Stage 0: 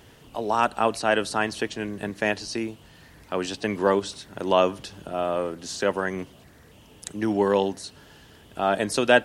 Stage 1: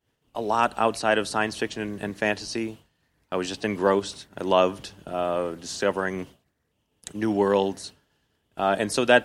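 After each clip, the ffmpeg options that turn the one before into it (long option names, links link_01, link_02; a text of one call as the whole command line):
ffmpeg -i in.wav -af "agate=range=-33dB:threshold=-37dB:ratio=3:detection=peak" out.wav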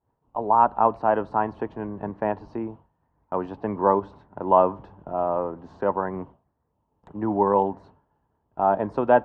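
ffmpeg -i in.wav -af "lowpass=frequency=950:width_type=q:width=3.9,lowshelf=frequency=210:gain=6,volume=-4dB" out.wav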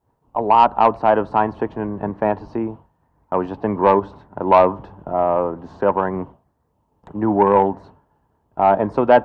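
ffmpeg -i in.wav -af "acontrast=84" out.wav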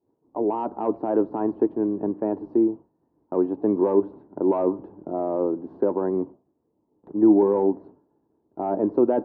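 ffmpeg -i in.wav -af "alimiter=limit=-9.5dB:level=0:latency=1:release=11,bandpass=frequency=330:width_type=q:width=3.2:csg=0,volume=6dB" out.wav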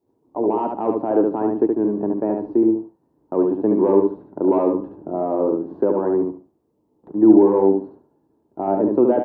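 ffmpeg -i in.wav -af "aecho=1:1:72|144|216:0.631|0.126|0.0252,volume=3dB" out.wav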